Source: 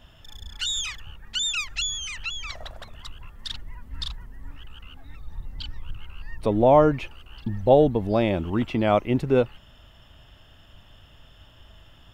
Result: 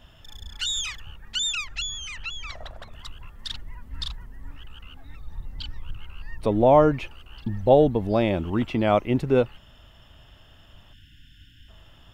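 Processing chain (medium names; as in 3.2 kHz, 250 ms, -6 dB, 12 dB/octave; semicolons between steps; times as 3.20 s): 1.55–2.92 s: treble shelf 3.8 kHz -6.5 dB; 10.93–11.68 s: spectral selection erased 330–1400 Hz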